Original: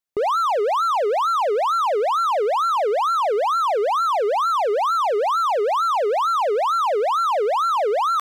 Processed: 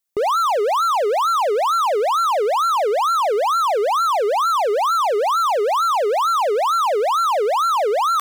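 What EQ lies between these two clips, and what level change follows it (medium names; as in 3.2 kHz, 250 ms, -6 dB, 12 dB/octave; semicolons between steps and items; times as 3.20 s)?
treble shelf 5.5 kHz +10 dB; +1.5 dB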